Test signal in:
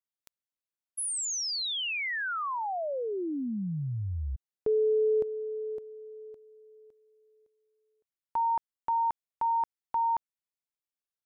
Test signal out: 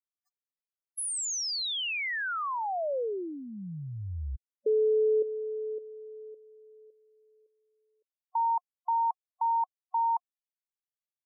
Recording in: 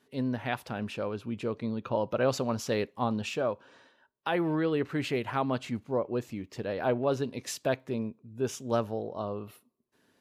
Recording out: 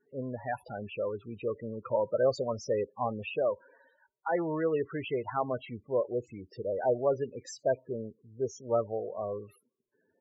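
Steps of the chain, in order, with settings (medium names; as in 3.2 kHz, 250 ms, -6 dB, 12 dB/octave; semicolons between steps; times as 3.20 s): loudest bins only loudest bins 16; ten-band graphic EQ 125 Hz -4 dB, 250 Hz -9 dB, 500 Hz +4 dB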